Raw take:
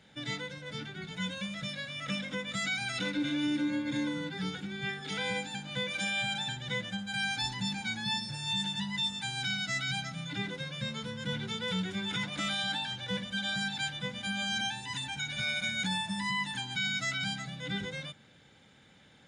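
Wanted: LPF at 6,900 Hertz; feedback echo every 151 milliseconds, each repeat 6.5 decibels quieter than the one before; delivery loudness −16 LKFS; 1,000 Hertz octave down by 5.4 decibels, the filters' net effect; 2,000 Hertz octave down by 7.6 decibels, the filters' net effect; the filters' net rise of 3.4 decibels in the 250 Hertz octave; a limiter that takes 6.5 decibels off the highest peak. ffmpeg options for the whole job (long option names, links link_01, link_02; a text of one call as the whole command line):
ffmpeg -i in.wav -af "lowpass=6900,equalizer=frequency=250:width_type=o:gain=5,equalizer=frequency=1000:width_type=o:gain=-5.5,equalizer=frequency=2000:width_type=o:gain=-8,alimiter=level_in=3.5dB:limit=-24dB:level=0:latency=1,volume=-3.5dB,aecho=1:1:151|302|453|604|755|906:0.473|0.222|0.105|0.0491|0.0231|0.0109,volume=19.5dB" out.wav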